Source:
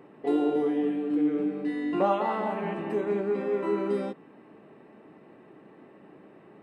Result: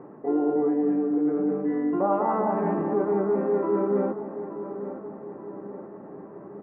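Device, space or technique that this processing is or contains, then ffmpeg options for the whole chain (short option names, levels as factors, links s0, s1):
compression on the reversed sound: -filter_complex "[0:a]areverse,acompressor=threshold=0.0398:ratio=6,areverse,lowpass=f=1400:w=0.5412,lowpass=f=1400:w=1.3066,asplit=2[s0][s1];[s1]adelay=875,lowpass=f=2100:p=1,volume=0.282,asplit=2[s2][s3];[s3]adelay=875,lowpass=f=2100:p=1,volume=0.55,asplit=2[s4][s5];[s5]adelay=875,lowpass=f=2100:p=1,volume=0.55,asplit=2[s6][s7];[s7]adelay=875,lowpass=f=2100:p=1,volume=0.55,asplit=2[s8][s9];[s9]adelay=875,lowpass=f=2100:p=1,volume=0.55,asplit=2[s10][s11];[s11]adelay=875,lowpass=f=2100:p=1,volume=0.55[s12];[s0][s2][s4][s6][s8][s10][s12]amix=inputs=7:normalize=0,volume=2.37"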